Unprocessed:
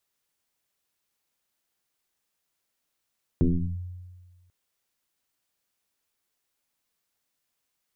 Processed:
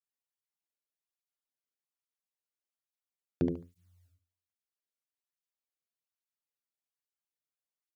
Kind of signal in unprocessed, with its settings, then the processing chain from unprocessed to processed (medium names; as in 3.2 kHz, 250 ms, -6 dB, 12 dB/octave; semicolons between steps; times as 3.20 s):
FM tone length 1.09 s, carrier 89.8 Hz, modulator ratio 0.94, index 3.1, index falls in 0.38 s linear, decay 1.50 s, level -16 dB
gate -46 dBFS, range -18 dB; on a send: feedback delay 72 ms, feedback 24%, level -4.5 dB; on the sum: cancelling through-zero flanger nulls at 1.2 Hz, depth 1.2 ms